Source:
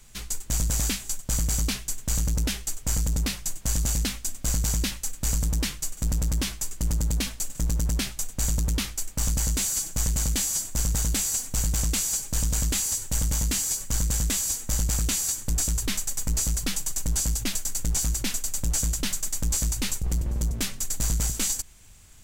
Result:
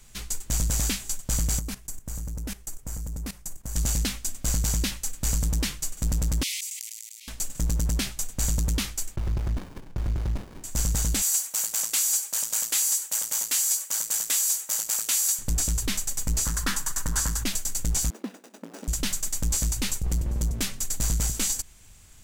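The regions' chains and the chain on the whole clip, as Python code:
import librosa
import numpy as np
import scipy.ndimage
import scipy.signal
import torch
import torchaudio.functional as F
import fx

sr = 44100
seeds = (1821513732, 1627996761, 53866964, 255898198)

y = fx.chain(x, sr, fx.peak_eq(hz=3500.0, db=-9.5, octaves=1.7),
    fx.level_steps(step_db=16), at=(1.59, 3.76))
y = fx.chain(y, sr, fx.steep_highpass(hz=2000.0, slope=96),
    fx.auto_swell(attack_ms=634.0),
    fx.sustainer(db_per_s=23.0), at=(6.43, 7.28))
y = fx.chain(y, sr, fx.lowpass(hz=5700.0, slope=24),
    fx.running_max(window=65), at=(9.16, 10.64))
y = fx.chain(y, sr, fx.highpass(hz=730.0, slope=12),
    fx.peak_eq(hz=14000.0, db=6.5, octaves=1.1), at=(11.22, 15.39))
y = fx.chain(y, sr, fx.band_shelf(hz=1300.0, db=11.5, octaves=1.2),
    fx.hum_notches(base_hz=60, count=7), at=(16.45, 17.44))
y = fx.chain(y, sr, fx.median_filter(points=41),
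    fx.brickwall_highpass(low_hz=190.0), at=(18.1, 18.88))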